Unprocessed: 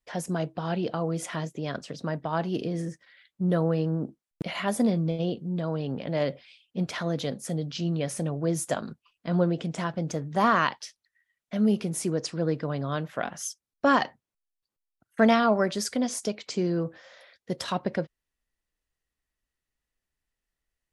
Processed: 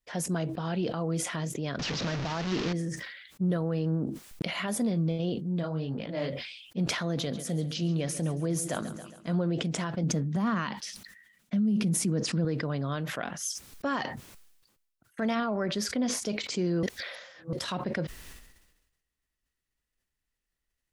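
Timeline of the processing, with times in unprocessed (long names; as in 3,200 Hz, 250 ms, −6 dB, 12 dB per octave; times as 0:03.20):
0:01.79–0:02.73: linear delta modulator 32 kbit/s, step −25.5 dBFS
0:05.62–0:06.29: micro pitch shift up and down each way 34 cents → 53 cents
0:07.03–0:09.35: repeating echo 137 ms, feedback 56%, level −16 dB
0:10.03–0:12.45: parametric band 200 Hz +14.5 dB 0.64 octaves
0:15.35–0:16.26: parametric band 8,900 Hz −13 dB 1.5 octaves
0:16.83–0:17.53: reverse
whole clip: parametric band 710 Hz −3.5 dB 1.5 octaves; brickwall limiter −21 dBFS; level that may fall only so fast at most 53 dB per second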